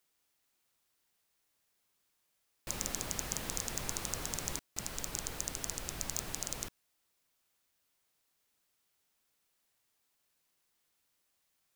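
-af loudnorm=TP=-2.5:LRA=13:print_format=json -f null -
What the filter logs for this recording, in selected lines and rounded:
"input_i" : "-37.8",
"input_tp" : "-12.8",
"input_lra" : "6.1",
"input_thresh" : "-47.9",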